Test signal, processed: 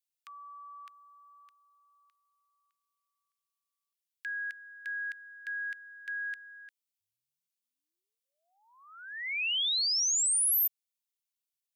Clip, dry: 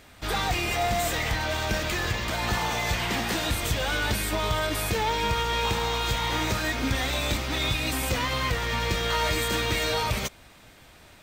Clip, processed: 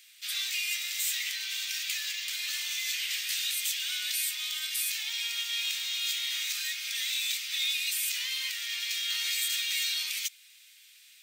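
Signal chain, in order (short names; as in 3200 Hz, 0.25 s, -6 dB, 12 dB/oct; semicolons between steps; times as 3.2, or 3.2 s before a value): inverse Chebyshev high-pass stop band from 530 Hz, stop band 70 dB; high shelf 7200 Hz +4.5 dB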